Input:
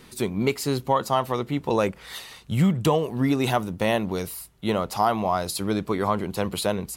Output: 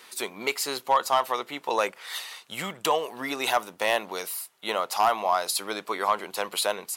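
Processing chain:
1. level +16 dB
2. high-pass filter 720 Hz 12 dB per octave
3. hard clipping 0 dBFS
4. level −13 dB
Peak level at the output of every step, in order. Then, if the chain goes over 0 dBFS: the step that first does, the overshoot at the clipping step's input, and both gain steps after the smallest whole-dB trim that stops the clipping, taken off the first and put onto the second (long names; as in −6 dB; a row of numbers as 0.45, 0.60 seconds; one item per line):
+6.5, +5.5, 0.0, −13.0 dBFS
step 1, 5.5 dB
step 1 +10 dB, step 4 −7 dB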